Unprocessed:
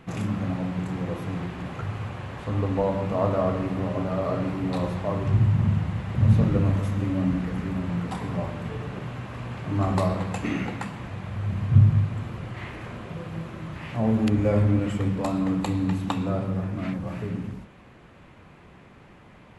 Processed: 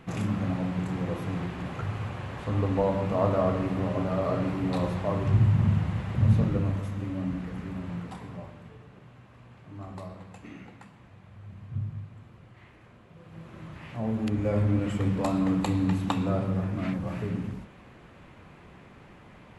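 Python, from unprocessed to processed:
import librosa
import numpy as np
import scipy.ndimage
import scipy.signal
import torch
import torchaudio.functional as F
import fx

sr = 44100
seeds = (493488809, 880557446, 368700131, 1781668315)

y = fx.gain(x, sr, db=fx.line((6.01, -1.0), (6.9, -7.0), (7.94, -7.0), (8.86, -17.0), (13.11, -17.0), (13.59, -7.0), (14.16, -7.0), (15.18, -0.5)))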